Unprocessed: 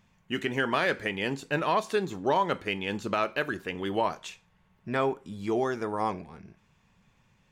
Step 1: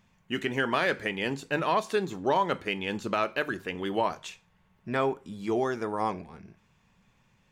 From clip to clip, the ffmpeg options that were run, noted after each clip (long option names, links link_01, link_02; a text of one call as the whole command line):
ffmpeg -i in.wav -af "bandreject=frequency=50:width_type=h:width=6,bandreject=frequency=100:width_type=h:width=6,bandreject=frequency=150:width_type=h:width=6" out.wav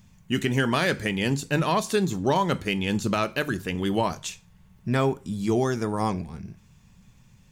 ffmpeg -i in.wav -af "bass=frequency=250:gain=13,treble=frequency=4000:gain=12,volume=1dB" out.wav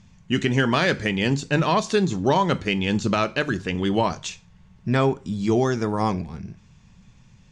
ffmpeg -i in.wav -af "lowpass=frequency=6900:width=0.5412,lowpass=frequency=6900:width=1.3066,volume=3dB" out.wav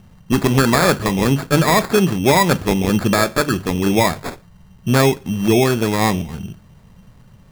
ffmpeg -i in.wav -af "acrusher=samples=15:mix=1:aa=0.000001,volume=6dB" out.wav